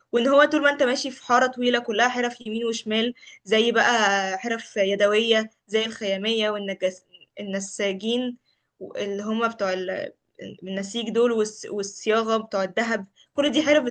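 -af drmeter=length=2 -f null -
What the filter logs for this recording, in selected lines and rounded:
Channel 1: DR: 12.1
Overall DR: 12.1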